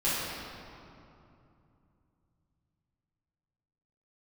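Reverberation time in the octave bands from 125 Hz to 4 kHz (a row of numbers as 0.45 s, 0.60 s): 4.5 s, 3.6 s, 2.8 s, 2.7 s, 2.1 s, 1.6 s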